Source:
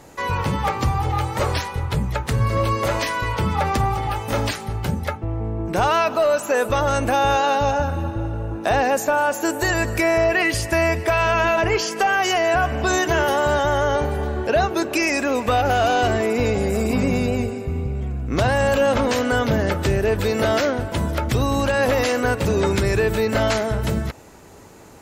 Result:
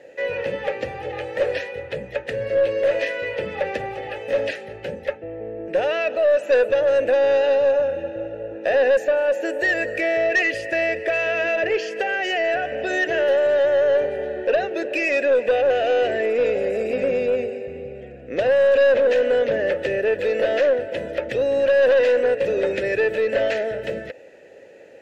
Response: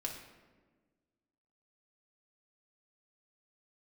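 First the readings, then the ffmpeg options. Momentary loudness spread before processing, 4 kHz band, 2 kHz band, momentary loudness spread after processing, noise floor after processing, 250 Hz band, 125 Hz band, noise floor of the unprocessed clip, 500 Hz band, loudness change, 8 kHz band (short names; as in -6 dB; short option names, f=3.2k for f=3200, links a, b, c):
7 LU, -6.0 dB, -1.0 dB, 12 LU, -41 dBFS, -9.0 dB, -19.0 dB, -33 dBFS, +3.0 dB, -0.5 dB, under -15 dB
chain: -filter_complex "[0:a]asplit=3[a][b][c];[a]bandpass=f=530:t=q:w=8,volume=0dB[d];[b]bandpass=f=1.84k:t=q:w=8,volume=-6dB[e];[c]bandpass=f=2.48k:t=q:w=8,volume=-9dB[f];[d][e][f]amix=inputs=3:normalize=0,acontrast=36,aeval=exprs='0.376*(cos(1*acos(clip(val(0)/0.376,-1,1)))-cos(1*PI/2))+0.0133*(cos(4*acos(clip(val(0)/0.376,-1,1)))-cos(4*PI/2))+0.0668*(cos(5*acos(clip(val(0)/0.376,-1,1)))-cos(5*PI/2))':c=same"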